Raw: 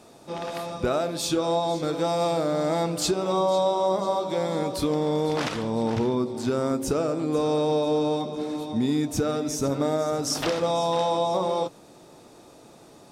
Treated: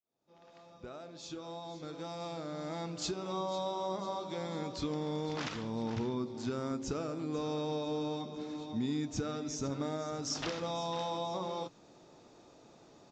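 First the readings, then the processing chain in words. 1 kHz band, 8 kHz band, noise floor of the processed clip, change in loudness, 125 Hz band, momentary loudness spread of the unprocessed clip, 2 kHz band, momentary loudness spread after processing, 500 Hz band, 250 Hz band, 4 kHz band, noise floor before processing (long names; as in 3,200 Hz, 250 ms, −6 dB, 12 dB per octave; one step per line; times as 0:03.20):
−12.5 dB, −11.5 dB, −60 dBFS, −12.0 dB, −9.5 dB, 5 LU, −10.0 dB, 8 LU, −14.5 dB, −10.5 dB, −10.0 dB, −50 dBFS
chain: fade in at the beginning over 3.79 s
dynamic equaliser 570 Hz, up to −6 dB, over −37 dBFS, Q 1.1
downsampling to 16,000 Hz
level −8.5 dB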